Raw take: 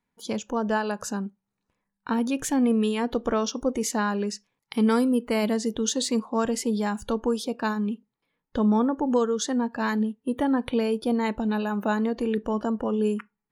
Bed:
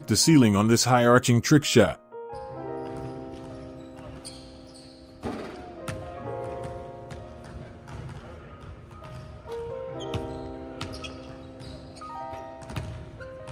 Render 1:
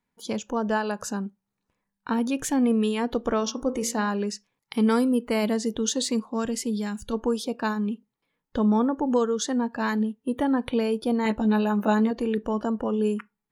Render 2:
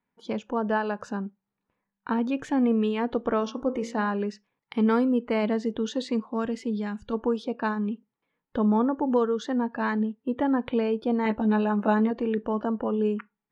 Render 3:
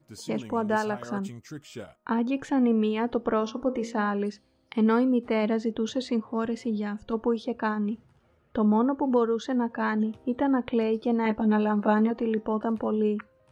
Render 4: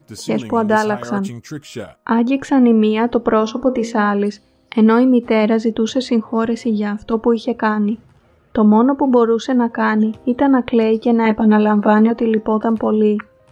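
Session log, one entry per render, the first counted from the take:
0:03.40–0:04.10: hum removal 57.57 Hz, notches 35; 0:06.12–0:07.12: parametric band 820 Hz −4 dB → −13 dB 1.8 octaves; 0:11.24–0:12.11: double-tracking delay 14 ms −3.5 dB
low-pass filter 2,600 Hz 12 dB per octave; low-shelf EQ 81 Hz −10 dB
mix in bed −22 dB
level +11 dB; brickwall limiter −2 dBFS, peak gain reduction 1.5 dB

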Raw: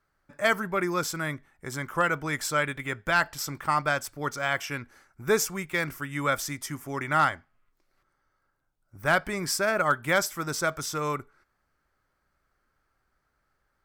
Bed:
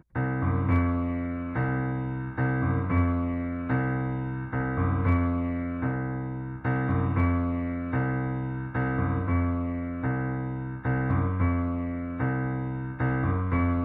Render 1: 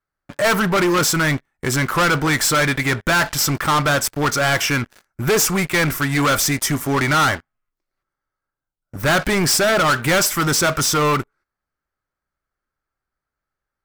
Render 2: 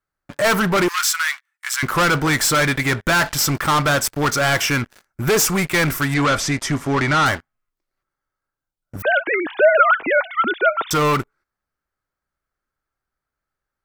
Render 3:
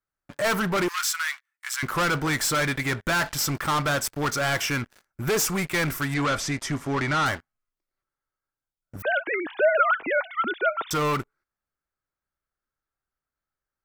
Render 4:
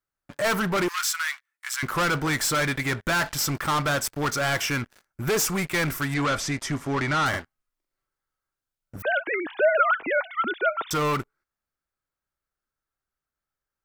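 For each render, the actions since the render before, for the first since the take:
leveller curve on the samples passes 5
0:00.88–0:01.83: inverse Chebyshev high-pass filter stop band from 460 Hz, stop band 50 dB; 0:06.14–0:07.26: high-frequency loss of the air 72 metres; 0:09.02–0:10.91: three sine waves on the formant tracks
level −7 dB
0:07.29–0:08.99: double-tracking delay 44 ms −2 dB

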